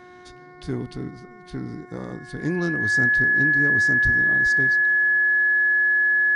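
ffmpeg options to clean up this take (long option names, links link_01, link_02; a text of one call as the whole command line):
ffmpeg -i in.wav -af "bandreject=frequency=361.4:width_type=h:width=4,bandreject=frequency=722.8:width_type=h:width=4,bandreject=frequency=1084.2:width_type=h:width=4,bandreject=frequency=1445.6:width_type=h:width=4,bandreject=frequency=1807:width_type=h:width=4,bandreject=frequency=2168.4:width_type=h:width=4,bandreject=frequency=1700:width=30" out.wav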